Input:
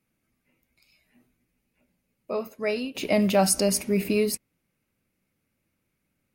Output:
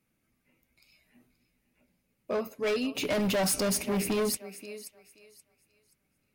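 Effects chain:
0:02.55–0:03.60: comb filter 6.9 ms, depth 46%
feedback echo with a high-pass in the loop 528 ms, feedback 27%, high-pass 530 Hz, level −15 dB
gain into a clipping stage and back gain 25 dB

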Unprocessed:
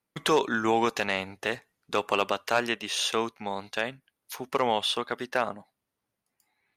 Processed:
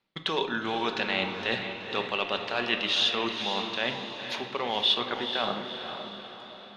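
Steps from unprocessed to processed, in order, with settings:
mains-hum notches 50/100/150 Hz
reversed playback
downward compressor 6 to 1, threshold −33 dBFS, peak gain reduction 14 dB
reversed playback
low-pass with resonance 3,700 Hz, resonance Q 2.6
feedback delay with all-pass diffusion 482 ms, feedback 49%, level −7.5 dB
on a send at −7 dB: convolution reverb RT60 1.1 s, pre-delay 5 ms
on the sum: level +5 dB

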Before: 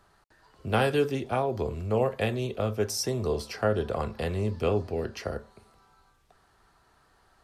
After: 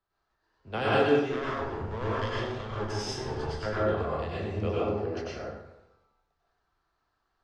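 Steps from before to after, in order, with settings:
0:01.27–0:03.66: lower of the sound and its delayed copy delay 0.62 ms
low-pass filter 6,200 Hz 24 dB per octave
parametric band 150 Hz −3 dB 1.3 octaves
dense smooth reverb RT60 1.1 s, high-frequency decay 0.6×, pre-delay 85 ms, DRR −6.5 dB
multiband upward and downward expander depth 40%
level −7.5 dB

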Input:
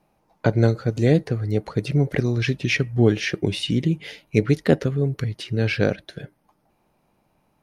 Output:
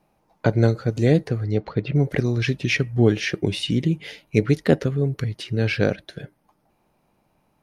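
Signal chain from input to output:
0:01.43–0:01.94: low-pass filter 7,200 Hz → 3,100 Hz 24 dB per octave

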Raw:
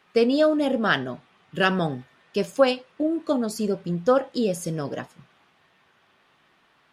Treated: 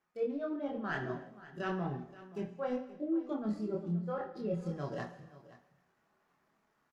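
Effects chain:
running median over 15 samples
treble cut that deepens with the level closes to 2,800 Hz, closed at −19.5 dBFS
reversed playback
downward compressor 6 to 1, threshold −29 dBFS, peak gain reduction 15.5 dB
reversed playback
multi-voice chorus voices 6, 0.66 Hz, delay 26 ms, depth 2.8 ms
noise reduction from a noise print of the clip's start 8 dB
single-tap delay 526 ms −17.5 dB
on a send at −9 dB: convolution reverb, pre-delay 3 ms
on the sum: level −1 dB

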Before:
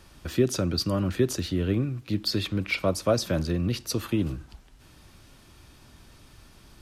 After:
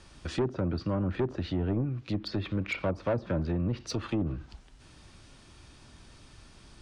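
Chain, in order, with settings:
treble cut that deepens with the level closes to 880 Hz, closed at −20.5 dBFS
elliptic low-pass filter 9,700 Hz, stop band 40 dB
soft clipping −22 dBFS, distortion −11 dB

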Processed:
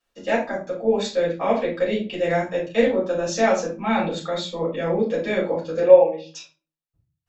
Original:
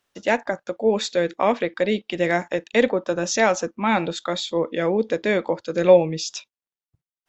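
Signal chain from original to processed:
0:05.80–0:06.35: loudspeaker in its box 480–2,800 Hz, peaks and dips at 500 Hz +4 dB, 850 Hz +6 dB, 1,300 Hz −6 dB, 2,200 Hz −5 dB
rectangular room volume 190 cubic metres, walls furnished, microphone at 6 metres
level −13.5 dB

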